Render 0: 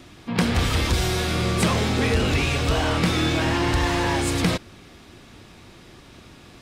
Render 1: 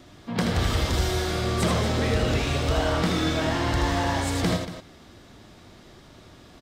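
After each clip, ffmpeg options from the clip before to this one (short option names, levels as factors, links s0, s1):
-filter_complex "[0:a]equalizer=f=630:t=o:w=0.33:g=5,equalizer=f=2500:t=o:w=0.33:g=-6,equalizer=f=10000:t=o:w=0.33:g=-5,asplit=2[s0][s1];[s1]aecho=0:1:78.72|233.2:0.562|0.251[s2];[s0][s2]amix=inputs=2:normalize=0,volume=0.631"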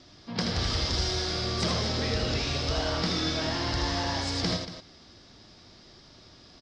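-af "lowpass=f=5100:t=q:w=5.1,volume=0.501"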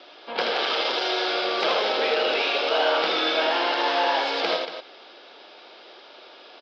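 -af "aeval=exprs='0.188*sin(PI/2*1.78*val(0)/0.188)':c=same,highpass=f=480:w=0.5412,highpass=f=480:w=1.3066,equalizer=f=660:t=q:w=4:g=-4,equalizer=f=1100:t=q:w=4:g=-7,equalizer=f=1900:t=q:w=4:g=-10,lowpass=f=3100:w=0.5412,lowpass=f=3100:w=1.3066,acontrast=76"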